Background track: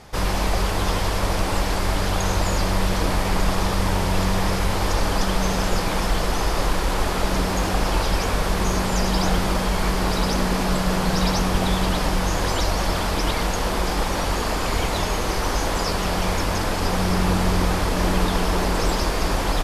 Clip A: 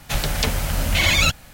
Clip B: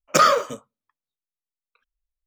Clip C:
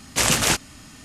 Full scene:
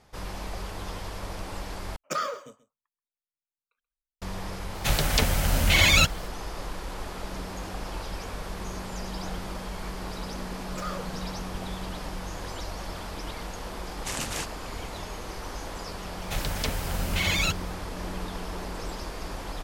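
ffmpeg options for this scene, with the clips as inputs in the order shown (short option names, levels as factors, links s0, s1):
-filter_complex "[2:a]asplit=2[s0][s1];[1:a]asplit=2[s2][s3];[0:a]volume=0.2[s4];[s0]aecho=1:1:132:0.133[s5];[s1]alimiter=limit=0.188:level=0:latency=1:release=317[s6];[s4]asplit=2[s7][s8];[s7]atrim=end=1.964[s9];[s5]atrim=end=2.26,asetpts=PTS-STARTPTS,volume=0.2[s10];[s8]atrim=start=4.216[s11];[s2]atrim=end=1.53,asetpts=PTS-STARTPTS,volume=0.841,afade=t=in:d=0.004:c=hsin,afade=t=out:st=1.526:d=0.004:c=hsin,adelay=4750[s12];[s6]atrim=end=2.26,asetpts=PTS-STARTPTS,volume=0.237,afade=t=in:d=0.004:c=hsin,afade=t=out:st=2.256:d=0.004:c=hsin,adelay=10630[s13];[3:a]atrim=end=1.04,asetpts=PTS-STARTPTS,volume=0.2,afade=t=in:d=0.004:c=hsin,afade=t=out:st=1.036:d=0.004:c=hsin,adelay=13890[s14];[s3]atrim=end=1.53,asetpts=PTS-STARTPTS,volume=0.376,afade=t=in:d=0.004:c=hsin,afade=t=out:st=1.526:d=0.004:c=hsin,adelay=16210[s15];[s9][s10]acrossfade=d=0.004:c1=hsin:c2=hsin[s16];[s16][s11]acrossfade=d=0.004:c1=hsin:c2=hsin[s17];[s17][s12][s13][s14][s15]amix=inputs=5:normalize=0"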